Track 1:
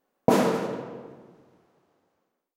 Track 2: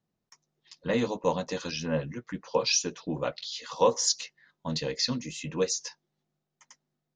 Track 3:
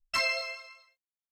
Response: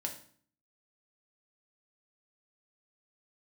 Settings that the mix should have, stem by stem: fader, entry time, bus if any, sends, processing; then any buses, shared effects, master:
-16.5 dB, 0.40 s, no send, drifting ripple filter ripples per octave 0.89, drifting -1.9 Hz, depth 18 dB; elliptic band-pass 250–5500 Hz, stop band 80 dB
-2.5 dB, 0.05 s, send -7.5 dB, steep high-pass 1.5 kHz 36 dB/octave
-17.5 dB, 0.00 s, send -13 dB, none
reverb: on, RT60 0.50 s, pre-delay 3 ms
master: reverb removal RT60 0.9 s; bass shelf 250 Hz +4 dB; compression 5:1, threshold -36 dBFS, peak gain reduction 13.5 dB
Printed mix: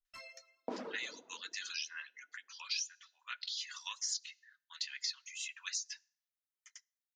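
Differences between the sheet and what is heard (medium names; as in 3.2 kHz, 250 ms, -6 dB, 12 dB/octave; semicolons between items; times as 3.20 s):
stem 1: missing drifting ripple filter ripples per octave 0.89, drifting -1.9 Hz, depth 18 dB; stem 3 -17.5 dB -> -24.5 dB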